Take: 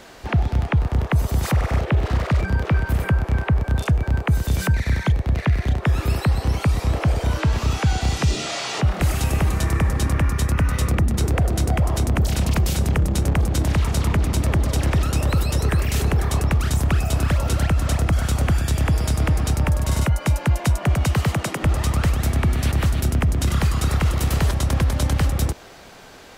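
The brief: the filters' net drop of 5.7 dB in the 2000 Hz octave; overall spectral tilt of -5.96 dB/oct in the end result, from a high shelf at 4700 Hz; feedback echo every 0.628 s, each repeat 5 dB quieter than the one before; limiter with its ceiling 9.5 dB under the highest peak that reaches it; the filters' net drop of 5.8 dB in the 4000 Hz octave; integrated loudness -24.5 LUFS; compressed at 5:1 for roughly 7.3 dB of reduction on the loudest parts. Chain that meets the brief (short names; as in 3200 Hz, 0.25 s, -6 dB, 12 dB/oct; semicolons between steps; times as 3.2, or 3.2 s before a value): bell 2000 Hz -6 dB; bell 4000 Hz -3.5 dB; high shelf 4700 Hz -4 dB; compressor 5:1, threshold -23 dBFS; limiter -24 dBFS; feedback echo 0.628 s, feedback 56%, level -5 dB; gain +7 dB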